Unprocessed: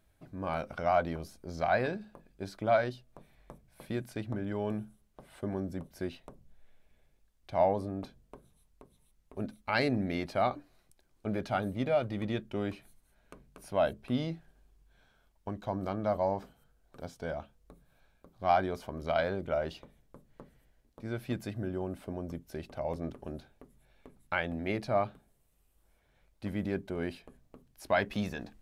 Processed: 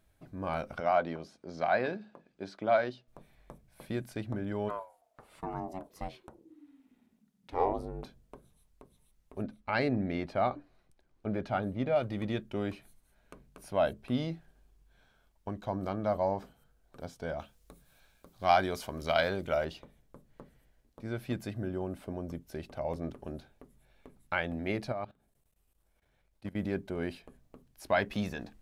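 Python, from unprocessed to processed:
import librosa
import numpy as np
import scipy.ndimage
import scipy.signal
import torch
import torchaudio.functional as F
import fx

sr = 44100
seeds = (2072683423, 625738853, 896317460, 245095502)

y = fx.bandpass_edges(x, sr, low_hz=180.0, high_hz=5200.0, at=(0.8, 3.08))
y = fx.ring_mod(y, sr, carrier_hz=fx.line((4.68, 840.0), (8.03, 140.0)), at=(4.68, 8.03), fade=0.02)
y = fx.lowpass(y, sr, hz=2500.0, slope=6, at=(9.42, 11.96))
y = fx.high_shelf(y, sr, hz=2100.0, db=11.0, at=(17.39, 19.65))
y = fx.level_steps(y, sr, step_db=18, at=(24.92, 26.56))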